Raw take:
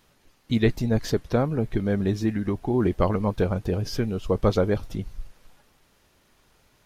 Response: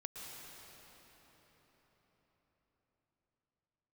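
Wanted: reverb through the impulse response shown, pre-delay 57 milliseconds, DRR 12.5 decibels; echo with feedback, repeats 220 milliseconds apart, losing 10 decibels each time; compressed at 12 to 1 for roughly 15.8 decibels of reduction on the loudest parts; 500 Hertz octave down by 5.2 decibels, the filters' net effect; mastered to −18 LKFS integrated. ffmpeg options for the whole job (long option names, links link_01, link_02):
-filter_complex "[0:a]equalizer=frequency=500:width_type=o:gain=-6.5,acompressor=threshold=-34dB:ratio=12,aecho=1:1:220|440|660|880:0.316|0.101|0.0324|0.0104,asplit=2[link_01][link_02];[1:a]atrim=start_sample=2205,adelay=57[link_03];[link_02][link_03]afir=irnorm=-1:irlink=0,volume=-10.5dB[link_04];[link_01][link_04]amix=inputs=2:normalize=0,volume=21.5dB"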